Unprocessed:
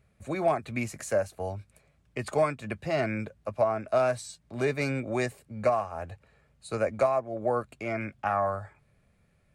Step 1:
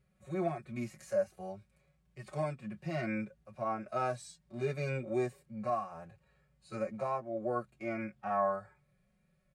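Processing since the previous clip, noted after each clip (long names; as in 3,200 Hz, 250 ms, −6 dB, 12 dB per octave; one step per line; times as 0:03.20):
harmonic and percussive parts rebalanced percussive −18 dB
comb filter 5.4 ms, depth 99%
level −6 dB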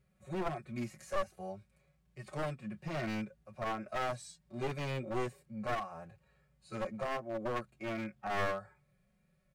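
wavefolder on the positive side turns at −33.5 dBFS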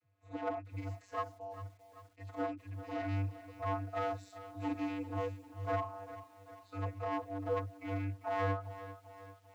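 channel vocoder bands 32, square 97.7 Hz
feedback echo at a low word length 394 ms, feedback 55%, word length 10 bits, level −13 dB
level +1.5 dB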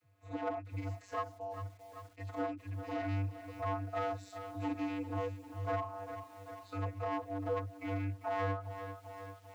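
downward compressor 1.5 to 1, threshold −51 dBFS, peak gain reduction 8 dB
level +6.5 dB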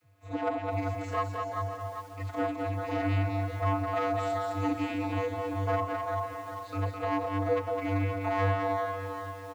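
bouncing-ball delay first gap 210 ms, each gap 0.85×, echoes 5
level +6.5 dB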